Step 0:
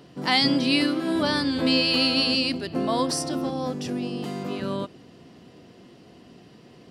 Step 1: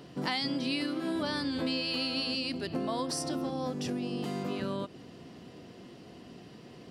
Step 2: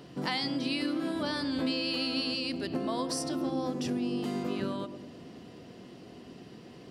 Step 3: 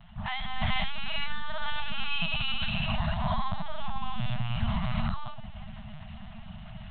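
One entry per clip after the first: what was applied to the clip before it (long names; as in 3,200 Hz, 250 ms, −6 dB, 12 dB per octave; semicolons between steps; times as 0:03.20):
downward compressor 4 to 1, threshold −31 dBFS, peak gain reduction 12.5 dB
feedback echo with a band-pass in the loop 106 ms, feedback 68%, band-pass 320 Hz, level −7 dB
reverb whose tail is shaped and stops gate 500 ms rising, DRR −7 dB; linear-prediction vocoder at 8 kHz pitch kept; brick-wall band-stop 230–610 Hz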